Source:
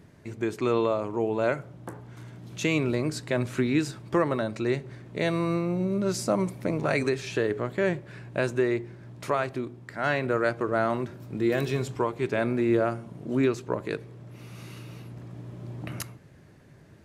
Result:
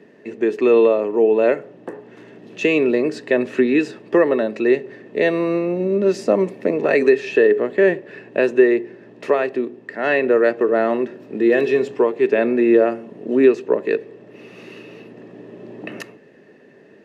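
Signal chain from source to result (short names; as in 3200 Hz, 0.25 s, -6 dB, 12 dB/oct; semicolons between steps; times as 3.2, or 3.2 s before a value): three-band isolator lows -24 dB, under 270 Hz, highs -13 dB, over 6400 Hz; small resonant body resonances 220/410/1800/2600 Hz, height 15 dB, ringing for 20 ms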